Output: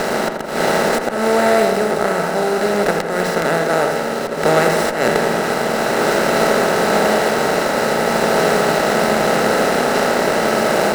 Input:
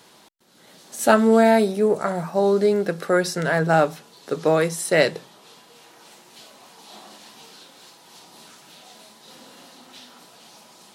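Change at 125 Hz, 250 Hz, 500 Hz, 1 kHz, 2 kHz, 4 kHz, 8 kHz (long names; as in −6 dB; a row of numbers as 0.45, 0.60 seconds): +4.5, +4.5, +7.0, +10.0, +10.0, +11.5, +9.0 decibels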